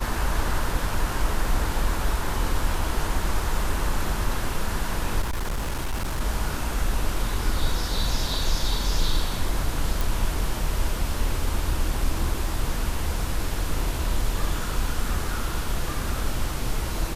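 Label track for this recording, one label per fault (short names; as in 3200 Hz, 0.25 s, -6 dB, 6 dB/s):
5.210000	6.210000	clipped -23 dBFS
10.010000	10.010000	pop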